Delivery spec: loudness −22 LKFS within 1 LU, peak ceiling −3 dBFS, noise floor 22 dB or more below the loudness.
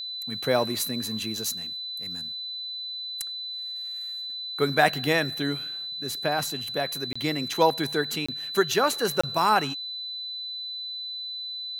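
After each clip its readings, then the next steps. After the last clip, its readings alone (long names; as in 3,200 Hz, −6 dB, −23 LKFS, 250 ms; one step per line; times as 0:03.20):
number of dropouts 3; longest dropout 25 ms; interfering tone 4,000 Hz; level of the tone −32 dBFS; integrated loudness −27.0 LKFS; sample peak −4.5 dBFS; target loudness −22.0 LKFS
→ repair the gap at 0:07.13/0:08.26/0:09.21, 25 ms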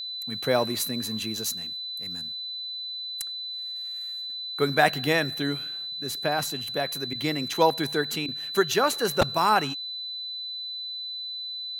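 number of dropouts 0; interfering tone 4,000 Hz; level of the tone −32 dBFS
→ notch filter 4,000 Hz, Q 30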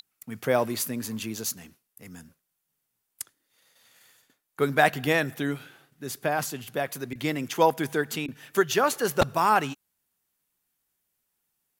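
interfering tone none found; integrated loudness −26.5 LKFS; sample peak −4.5 dBFS; target loudness −22.0 LKFS
→ level +4.5 dB
brickwall limiter −3 dBFS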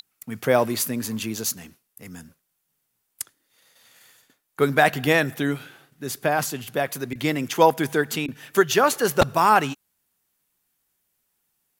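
integrated loudness −22.5 LKFS; sample peak −3.0 dBFS; background noise floor −75 dBFS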